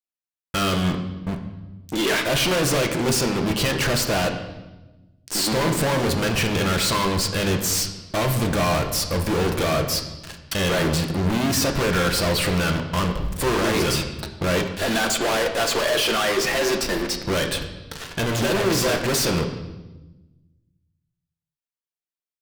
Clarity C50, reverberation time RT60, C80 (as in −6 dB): 8.0 dB, 1.1 s, 10.0 dB